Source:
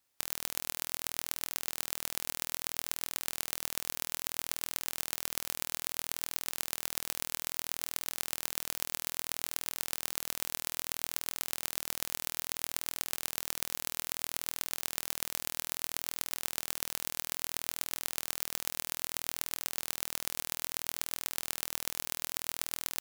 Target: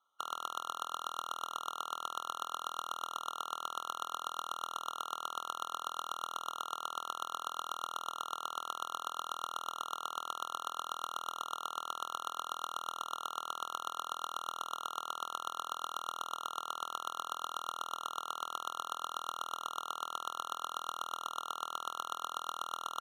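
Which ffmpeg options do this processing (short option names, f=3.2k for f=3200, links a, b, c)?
-af "bandpass=f=1.4k:t=q:w=4.4:csg=0,afftfilt=real='re*eq(mod(floor(b*sr/1024/1400),2),0)':imag='im*eq(mod(floor(b*sr/1024/1400),2),0)':win_size=1024:overlap=0.75,volume=17.5dB"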